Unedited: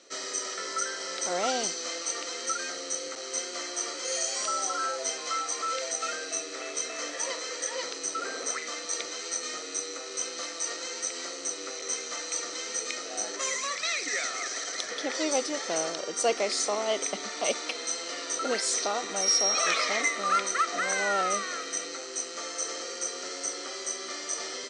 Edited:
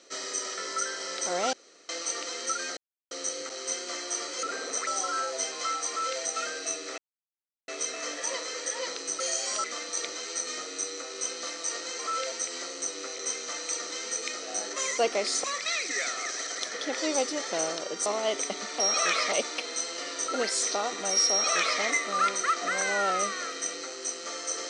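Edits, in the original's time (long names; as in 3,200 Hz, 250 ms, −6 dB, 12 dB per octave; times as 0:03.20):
0:01.53–0:01.89: fill with room tone
0:02.77: splice in silence 0.34 s
0:04.09–0:04.53: swap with 0:08.16–0:08.60
0:05.54–0:05.87: duplicate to 0:10.95
0:06.64: splice in silence 0.70 s
0:16.23–0:16.69: move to 0:13.61
0:19.41–0:19.93: duplicate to 0:17.43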